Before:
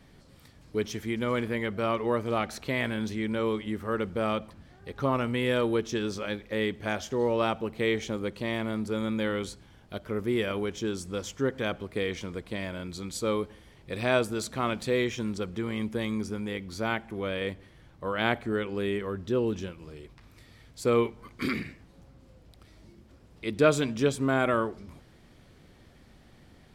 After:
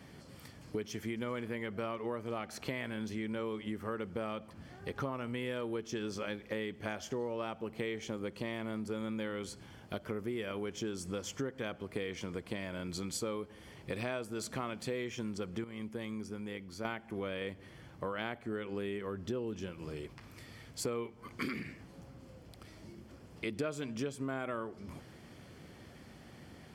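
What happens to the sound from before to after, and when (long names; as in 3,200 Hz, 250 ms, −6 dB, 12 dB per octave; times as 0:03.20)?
0:15.64–0:16.85: clip gain −11 dB
whole clip: high-pass filter 86 Hz; notch filter 3,800 Hz, Q 8.6; downward compressor 6 to 1, threshold −39 dBFS; level +3.5 dB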